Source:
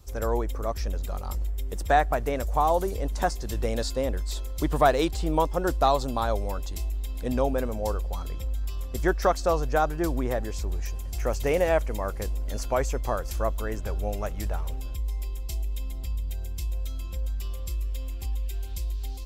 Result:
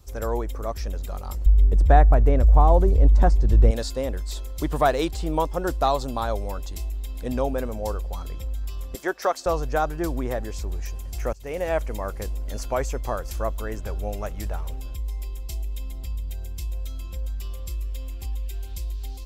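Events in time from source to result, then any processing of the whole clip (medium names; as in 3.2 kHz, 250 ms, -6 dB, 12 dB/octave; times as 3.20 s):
1.46–3.71 s: tilt EQ -3.5 dB/octave
8.95–9.46 s: high-pass 370 Hz
11.33–11.82 s: fade in, from -23 dB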